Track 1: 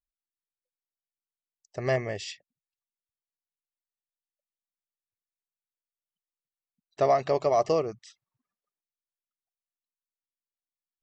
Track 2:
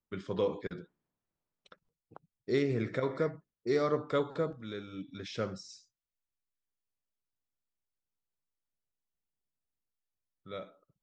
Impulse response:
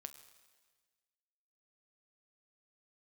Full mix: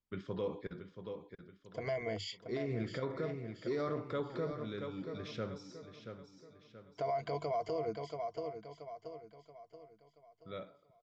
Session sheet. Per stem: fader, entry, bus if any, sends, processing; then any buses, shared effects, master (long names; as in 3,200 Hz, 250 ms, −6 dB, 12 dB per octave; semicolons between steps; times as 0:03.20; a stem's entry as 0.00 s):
−7.0 dB, 0.00 s, no send, echo send −10 dB, EQ curve with evenly spaced ripples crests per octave 1.8, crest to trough 16 dB; downward compressor, threshold −19 dBFS, peak gain reduction 7 dB
−5.5 dB, 0.00 s, send −5.5 dB, echo send −9 dB, low-shelf EQ 190 Hz +4.5 dB; automatic ducking −10 dB, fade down 1.90 s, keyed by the first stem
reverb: on, RT60 1.5 s, pre-delay 7 ms
echo: repeating echo 679 ms, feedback 42%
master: low-pass filter 5,300 Hz 12 dB per octave; brickwall limiter −28 dBFS, peak gain reduction 11 dB